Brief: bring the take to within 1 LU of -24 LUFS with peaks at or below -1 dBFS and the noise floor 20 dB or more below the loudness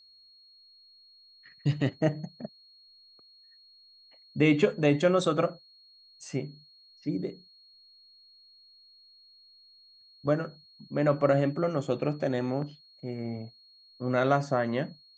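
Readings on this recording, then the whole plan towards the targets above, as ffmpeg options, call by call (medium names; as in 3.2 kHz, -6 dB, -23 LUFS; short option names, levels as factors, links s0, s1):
steady tone 4.3 kHz; tone level -55 dBFS; loudness -29.0 LUFS; peak level -10.0 dBFS; loudness target -24.0 LUFS
-> -af "bandreject=f=4300:w=30"
-af "volume=1.78"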